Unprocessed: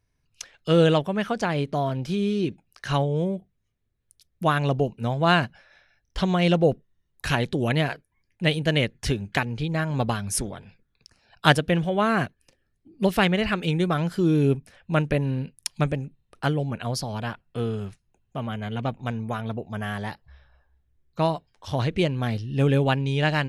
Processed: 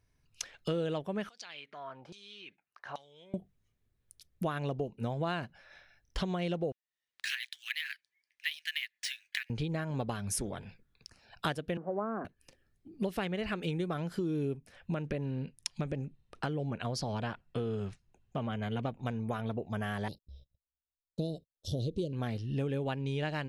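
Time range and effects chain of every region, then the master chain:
0:01.29–0:03.34: downward compressor 3 to 1, threshold −29 dBFS + auto-filter band-pass saw down 1.2 Hz 680–5,900 Hz
0:06.72–0:09.50: elliptic high-pass filter 1,800 Hz, stop band 70 dB + linearly interpolated sample-rate reduction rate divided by 3×
0:11.77–0:12.25: spike at every zero crossing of −22.5 dBFS + elliptic band-pass filter 210–1,300 Hz, stop band 50 dB
0:14.94–0:18.63: low-pass filter 7,800 Hz + downward compressor 2.5 to 1, threshold −24 dBFS
0:20.08–0:22.13: Chebyshev band-stop filter 510–3,700 Hz, order 3 + noise gate −55 dBFS, range −38 dB
whole clip: dynamic equaliser 410 Hz, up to +4 dB, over −35 dBFS, Q 0.9; downward compressor 6 to 1, threshold −32 dBFS

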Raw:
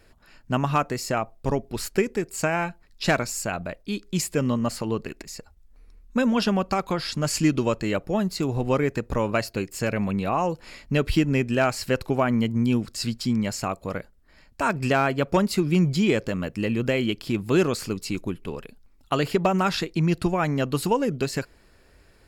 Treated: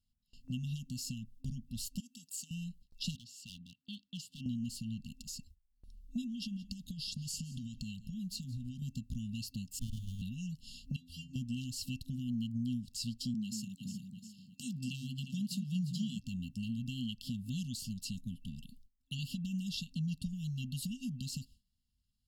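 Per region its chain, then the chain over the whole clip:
0:02.00–0:02.51: high-pass filter 510 Hz + downward compressor 2.5 to 1, threshold −31 dBFS
0:03.15–0:04.46: high-pass filter 99 Hz 24 dB per octave + three-way crossover with the lows and the highs turned down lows −13 dB, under 540 Hz, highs −22 dB, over 3,600 Hz + gain into a clipping stage and back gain 29 dB
0:06.24–0:08.82: downward compressor, threshold −27 dBFS + single-tap delay 172 ms −20 dB
0:09.79–0:10.22: mains-hum notches 50/100/150/200/250 Hz + voice inversion scrambler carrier 3,600 Hz + windowed peak hold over 65 samples
0:10.96–0:11.36: low-shelf EQ 440 Hz −7.5 dB + stiff-string resonator 82 Hz, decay 0.57 s, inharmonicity 0.008
0:13.34–0:16.19: high-pass filter 140 Hz 24 dB per octave + delay that swaps between a low-pass and a high-pass 177 ms, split 1,000 Hz, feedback 60%, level −7.5 dB
whole clip: brick-wall band-stop 260–2,700 Hz; noise gate with hold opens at −44 dBFS; downward compressor 2 to 1, threshold −38 dBFS; level −3.5 dB

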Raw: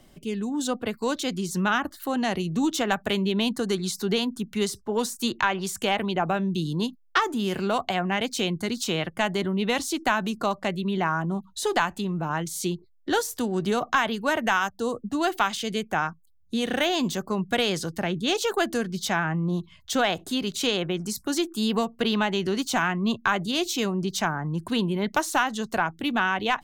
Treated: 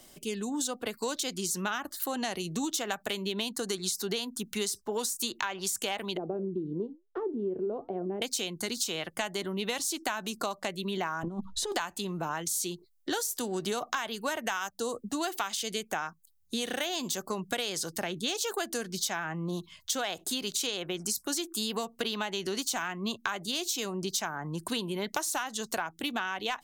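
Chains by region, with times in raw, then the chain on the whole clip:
0:06.17–0:08.22: low-pass with resonance 400 Hz, resonance Q 2.9 + flanger 1.1 Hz, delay 3.4 ms, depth 5.7 ms, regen −84%
0:11.23–0:11.72: RIAA equalisation playback + notch filter 160 Hz, Q 5.1 + compressor whose output falls as the input rises −25 dBFS, ratio −0.5
whole clip: bass and treble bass −9 dB, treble +10 dB; downward compressor, threshold −29 dBFS

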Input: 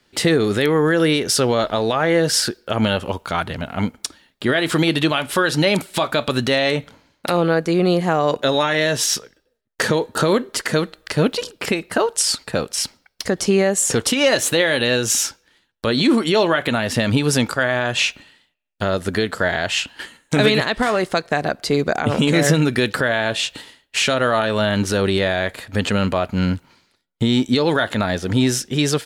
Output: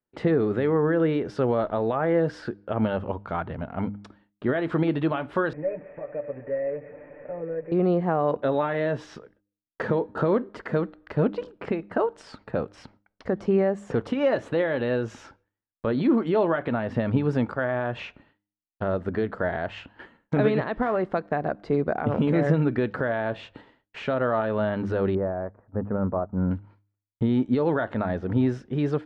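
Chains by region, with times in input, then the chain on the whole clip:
0:05.53–0:07.72: linear delta modulator 16 kbit/s, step −22 dBFS + formant resonators in series e + comb filter 6.8 ms, depth 89%
0:25.15–0:26.51: low-pass filter 1,300 Hz 24 dB per octave + expander for the loud parts, over −38 dBFS
whole clip: low-pass filter 1,200 Hz 12 dB per octave; noise gate with hold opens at −45 dBFS; hum removal 101.7 Hz, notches 3; level −5 dB

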